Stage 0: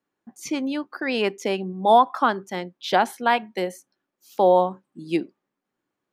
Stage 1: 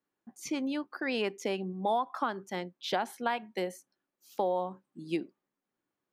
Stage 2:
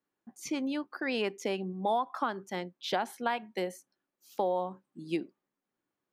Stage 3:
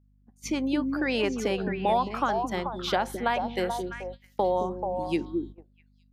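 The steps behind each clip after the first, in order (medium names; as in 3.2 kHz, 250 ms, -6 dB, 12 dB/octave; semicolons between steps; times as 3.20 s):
compression 4:1, threshold -21 dBFS, peak gain reduction 9.5 dB; trim -6 dB
no audible change
hum 50 Hz, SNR 14 dB; repeats whose band climbs or falls 217 ms, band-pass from 270 Hz, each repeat 1.4 oct, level -1 dB; gate -43 dBFS, range -18 dB; trim +4.5 dB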